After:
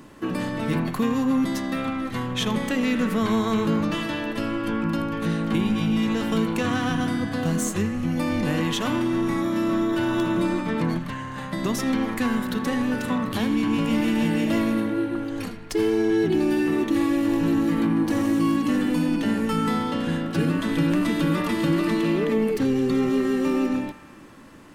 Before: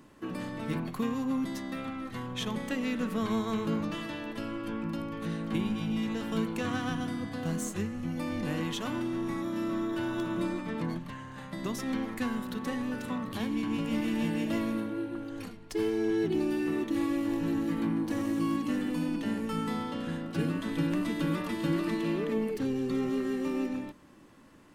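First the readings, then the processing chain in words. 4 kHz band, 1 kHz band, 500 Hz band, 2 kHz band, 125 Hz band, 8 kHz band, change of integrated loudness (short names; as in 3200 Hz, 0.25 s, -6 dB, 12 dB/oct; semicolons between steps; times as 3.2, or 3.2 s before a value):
+9.0 dB, +9.0 dB, +8.5 dB, +9.0 dB, +8.5 dB, +9.0 dB, +8.5 dB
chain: in parallel at +3 dB: limiter -25 dBFS, peak gain reduction 7.5 dB; on the sum: narrowing echo 80 ms, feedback 83%, band-pass 1700 Hz, level -13.5 dB; gain +2 dB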